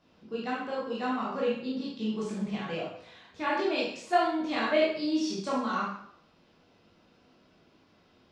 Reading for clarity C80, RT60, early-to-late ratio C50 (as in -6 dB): 5.5 dB, 0.65 s, 1.0 dB